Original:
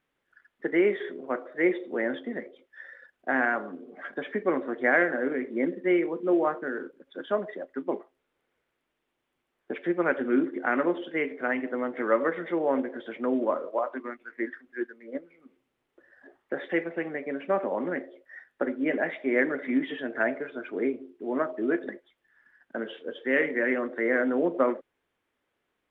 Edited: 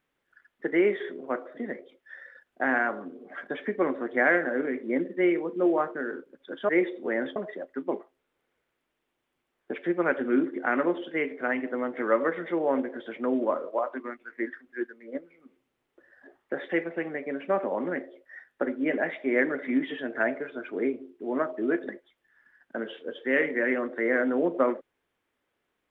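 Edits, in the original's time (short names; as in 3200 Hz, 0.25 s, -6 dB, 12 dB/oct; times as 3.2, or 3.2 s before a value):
1.57–2.24 move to 7.36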